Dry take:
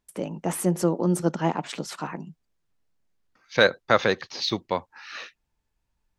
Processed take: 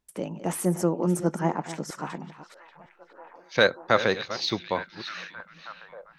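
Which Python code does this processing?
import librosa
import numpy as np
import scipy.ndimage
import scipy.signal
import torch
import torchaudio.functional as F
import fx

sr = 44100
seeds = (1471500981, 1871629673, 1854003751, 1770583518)

y = fx.reverse_delay(x, sr, ms=318, wet_db=-13.0)
y = fx.band_shelf(y, sr, hz=3400.0, db=-9.0, octaves=1.1, at=(0.65, 2.07))
y = fx.echo_stepped(y, sr, ms=586, hz=3100.0, octaves=-0.7, feedback_pct=70, wet_db=-11)
y = F.gain(torch.from_numpy(y), -1.5).numpy()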